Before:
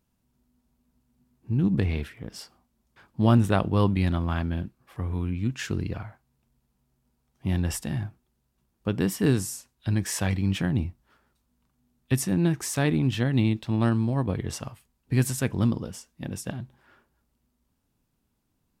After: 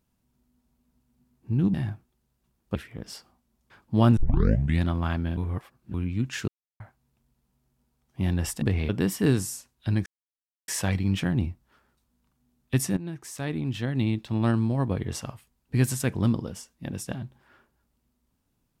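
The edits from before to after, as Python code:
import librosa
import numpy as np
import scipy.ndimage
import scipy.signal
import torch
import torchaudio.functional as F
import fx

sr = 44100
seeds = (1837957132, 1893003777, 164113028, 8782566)

y = fx.edit(x, sr, fx.swap(start_s=1.74, length_s=0.27, other_s=7.88, other_length_s=1.01),
    fx.tape_start(start_s=3.43, length_s=0.65),
    fx.reverse_span(start_s=4.63, length_s=0.57),
    fx.silence(start_s=5.74, length_s=0.32),
    fx.insert_silence(at_s=10.06, length_s=0.62),
    fx.fade_in_from(start_s=12.35, length_s=1.62, floor_db=-15.0), tone=tone)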